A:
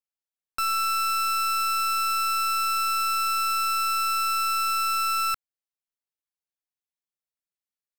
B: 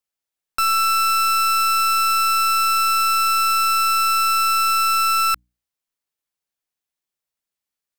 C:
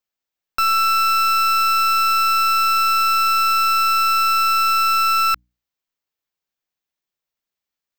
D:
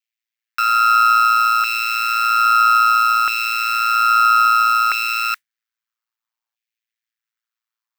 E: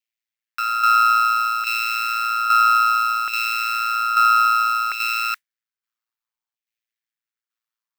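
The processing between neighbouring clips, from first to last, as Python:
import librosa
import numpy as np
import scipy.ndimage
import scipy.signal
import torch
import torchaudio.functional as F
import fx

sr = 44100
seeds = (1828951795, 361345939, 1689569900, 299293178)

y1 = fx.hum_notches(x, sr, base_hz=60, count=5)
y1 = y1 * 10.0 ** (7.0 / 20.0)
y2 = fx.peak_eq(y1, sr, hz=10000.0, db=-13.0, octaves=0.53)
y2 = y2 * 10.0 ** (1.5 / 20.0)
y3 = y2 * np.sin(2.0 * np.pi * 57.0 * np.arange(len(y2)) / sr)
y3 = fx.mod_noise(y3, sr, seeds[0], snr_db=31)
y3 = fx.filter_lfo_highpass(y3, sr, shape='saw_down', hz=0.61, low_hz=870.0, high_hz=2400.0, q=2.5)
y4 = fx.tremolo_shape(y3, sr, shape='saw_down', hz=1.2, depth_pct=55)
y4 = y4 * 10.0 ** (-1.0 / 20.0)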